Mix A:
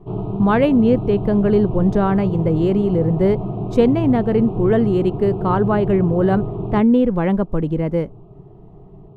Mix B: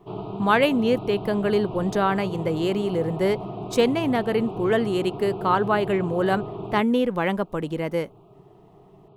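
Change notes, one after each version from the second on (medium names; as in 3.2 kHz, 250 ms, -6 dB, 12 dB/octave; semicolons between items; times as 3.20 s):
master: add tilt EQ +4 dB/octave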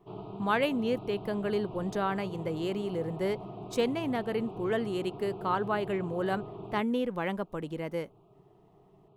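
speech -8.5 dB; background -9.0 dB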